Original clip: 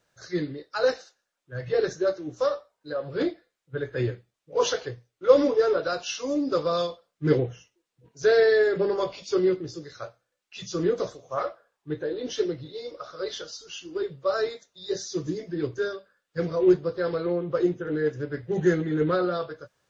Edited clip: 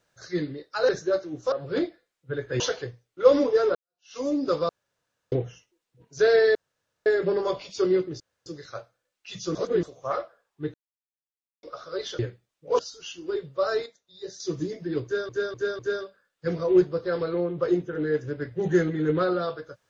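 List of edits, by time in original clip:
0.89–1.83 cut
2.46–2.96 cut
4.04–4.64 move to 13.46
5.79–6.21 fade in exponential
6.73–7.36 room tone
8.59 insert room tone 0.51 s
9.73 insert room tone 0.26 s
10.82–11.1 reverse
12.01–12.9 mute
14.53–15.07 gain -8.5 dB
15.71–15.96 loop, 4 plays

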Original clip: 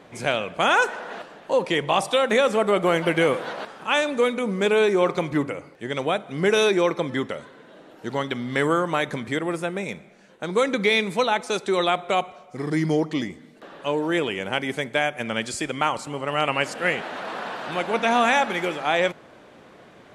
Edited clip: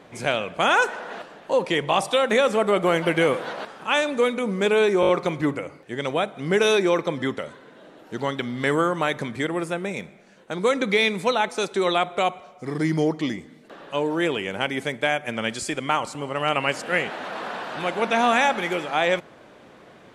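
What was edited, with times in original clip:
5.01 stutter 0.02 s, 5 plays

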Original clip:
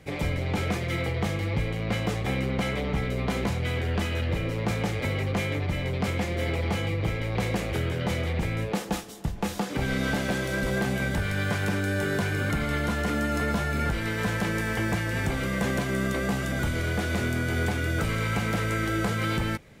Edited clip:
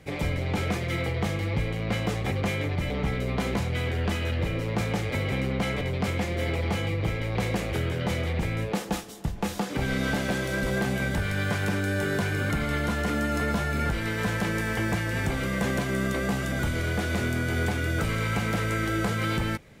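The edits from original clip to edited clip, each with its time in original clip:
2.31–2.8 swap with 5.22–5.81

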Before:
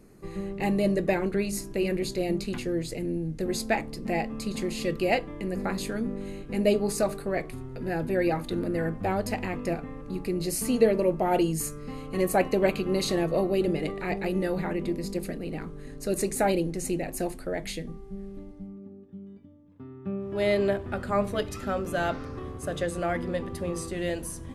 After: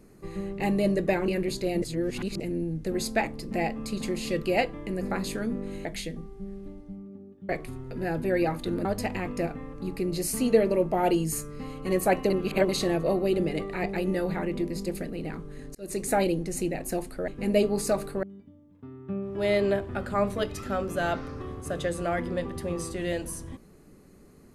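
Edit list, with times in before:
1.28–1.82 cut
2.36–2.94 reverse
6.39–7.34 swap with 17.56–19.2
8.7–9.13 cut
12.58–12.97 reverse
16.03–16.35 fade in

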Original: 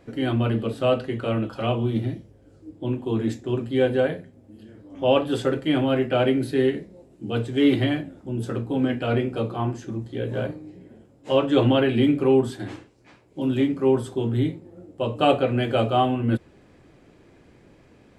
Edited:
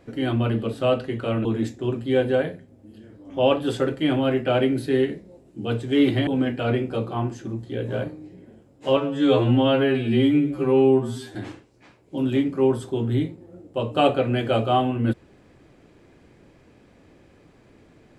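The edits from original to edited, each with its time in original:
1.45–3.1 cut
7.92–8.7 cut
11.4–12.59 stretch 2×

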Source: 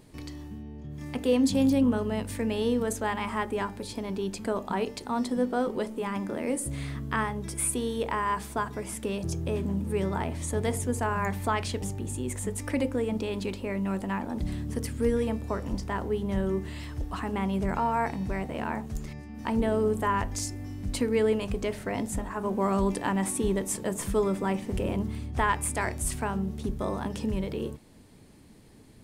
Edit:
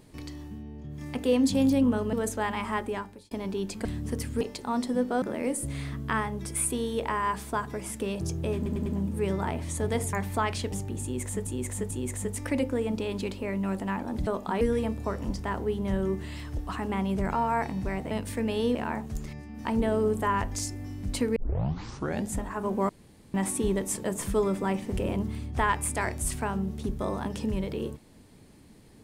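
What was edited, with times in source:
2.13–2.77 move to 18.55
3.46–3.95 fade out
4.49–4.83 swap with 14.49–15.05
5.64–6.25 cut
9.59 stutter 0.10 s, 4 plays
10.86–11.23 cut
12.13–12.57 loop, 3 plays
21.16 tape start 0.95 s
22.69–23.14 room tone

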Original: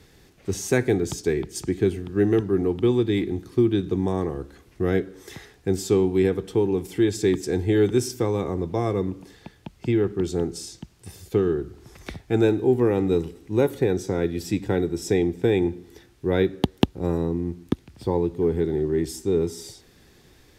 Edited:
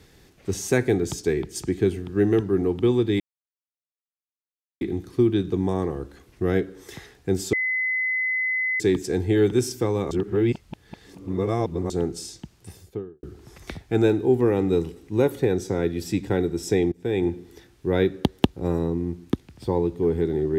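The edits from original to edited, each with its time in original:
3.2 insert silence 1.61 s
5.92–7.19 bleep 2030 Hz -21.5 dBFS
8.5–10.29 reverse
10.95–11.62 studio fade out
15.31–15.66 fade in, from -21 dB

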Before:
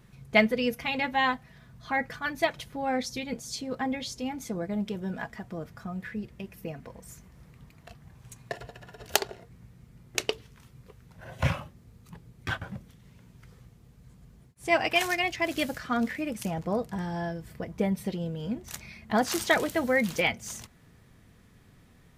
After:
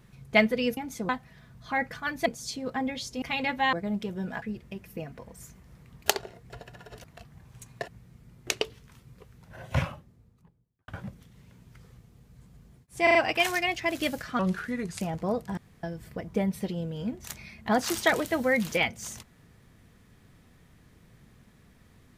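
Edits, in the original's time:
0.77–1.28 swap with 4.27–4.59
2.45–3.31 cut
5.28–6.1 cut
7.74–8.58 swap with 9.12–9.56
11.26–12.56 studio fade out
14.71 stutter 0.04 s, 4 plays
15.95–16.44 speed 80%
17.01–17.27 room tone

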